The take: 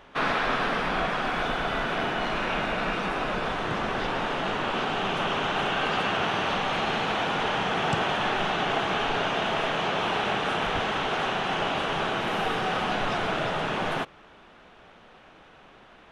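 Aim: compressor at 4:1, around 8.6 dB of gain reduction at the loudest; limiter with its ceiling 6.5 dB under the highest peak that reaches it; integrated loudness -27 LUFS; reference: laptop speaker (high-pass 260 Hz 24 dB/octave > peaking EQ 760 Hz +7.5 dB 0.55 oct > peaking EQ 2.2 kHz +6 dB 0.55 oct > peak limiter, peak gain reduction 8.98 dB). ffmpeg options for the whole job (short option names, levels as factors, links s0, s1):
-af "acompressor=threshold=0.0224:ratio=4,alimiter=level_in=1.58:limit=0.0631:level=0:latency=1,volume=0.631,highpass=f=260:w=0.5412,highpass=f=260:w=1.3066,equalizer=f=760:t=o:w=0.55:g=7.5,equalizer=f=2200:t=o:w=0.55:g=6,volume=3.76,alimiter=limit=0.112:level=0:latency=1"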